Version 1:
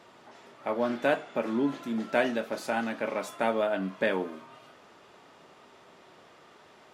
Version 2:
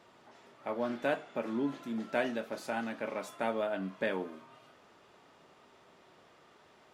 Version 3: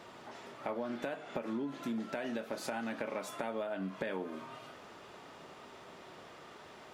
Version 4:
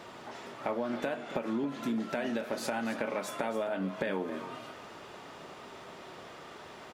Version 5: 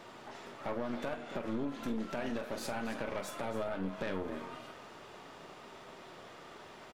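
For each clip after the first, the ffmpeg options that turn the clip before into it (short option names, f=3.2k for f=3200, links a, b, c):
-af "lowshelf=f=100:g=5,volume=-6dB"
-af "alimiter=level_in=3dB:limit=-24dB:level=0:latency=1:release=219,volume=-3dB,acompressor=threshold=-43dB:ratio=6,volume=8.5dB"
-af "aecho=1:1:273:0.224,volume=4.5dB"
-filter_complex "[0:a]aeval=exprs='(tanh(31.6*val(0)+0.7)-tanh(0.7))/31.6':c=same,asplit=2[a][b];[b]adelay=46,volume=-13dB[c];[a][c]amix=inputs=2:normalize=0"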